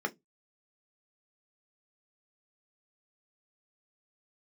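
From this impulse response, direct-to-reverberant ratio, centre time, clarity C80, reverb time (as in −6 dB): 5.0 dB, 4 ms, 36.5 dB, 0.15 s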